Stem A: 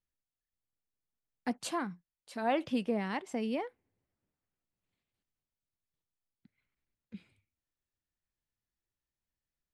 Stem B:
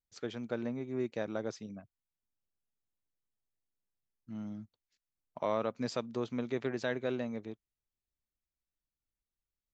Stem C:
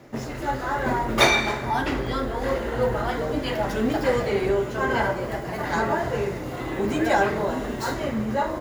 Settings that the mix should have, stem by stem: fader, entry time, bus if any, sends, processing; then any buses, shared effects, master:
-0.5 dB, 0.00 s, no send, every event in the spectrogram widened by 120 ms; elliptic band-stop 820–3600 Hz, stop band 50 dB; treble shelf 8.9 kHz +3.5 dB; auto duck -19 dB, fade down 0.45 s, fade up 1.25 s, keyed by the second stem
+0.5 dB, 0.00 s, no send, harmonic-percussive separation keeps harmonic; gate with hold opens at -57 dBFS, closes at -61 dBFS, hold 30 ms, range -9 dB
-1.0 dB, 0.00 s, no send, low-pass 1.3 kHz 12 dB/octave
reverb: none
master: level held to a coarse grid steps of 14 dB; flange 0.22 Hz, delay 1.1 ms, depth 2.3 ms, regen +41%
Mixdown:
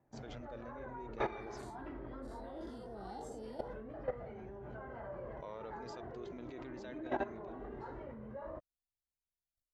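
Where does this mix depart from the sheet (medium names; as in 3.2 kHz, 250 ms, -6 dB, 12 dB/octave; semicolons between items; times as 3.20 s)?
stem B: missing harmonic-percussive separation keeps harmonic; stem C -1.0 dB -> -9.0 dB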